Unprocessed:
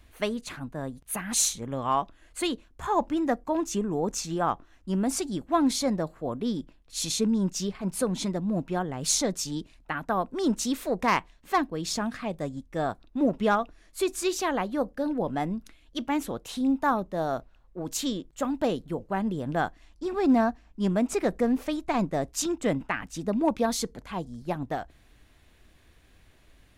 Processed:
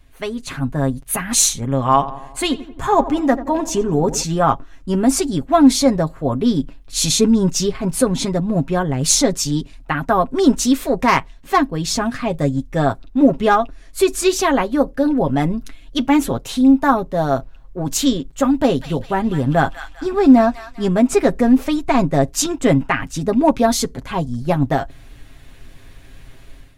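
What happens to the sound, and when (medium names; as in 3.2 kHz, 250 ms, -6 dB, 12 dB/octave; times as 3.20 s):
1.77–4.23 s: filtered feedback delay 88 ms, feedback 60%, level -14 dB
18.52–20.86 s: feedback echo behind a high-pass 199 ms, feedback 44%, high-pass 1.8 kHz, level -6 dB
whole clip: bass shelf 140 Hz +7.5 dB; comb 7.4 ms, depth 60%; level rider gain up to 11.5 dB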